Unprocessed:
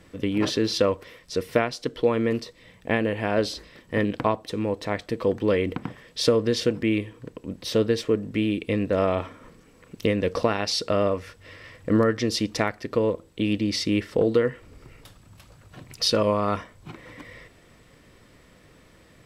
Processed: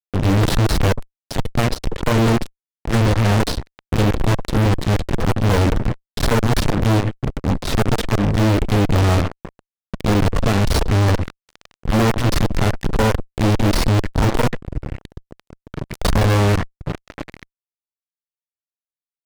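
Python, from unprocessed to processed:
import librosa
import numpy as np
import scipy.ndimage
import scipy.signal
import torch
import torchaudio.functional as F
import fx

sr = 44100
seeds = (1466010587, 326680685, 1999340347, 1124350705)

y = fx.cheby_harmonics(x, sr, harmonics=(8,), levels_db=(-10,), full_scale_db=-6.5)
y = fx.riaa(y, sr, side='playback')
y = fx.fuzz(y, sr, gain_db=32.0, gate_db=-30.0)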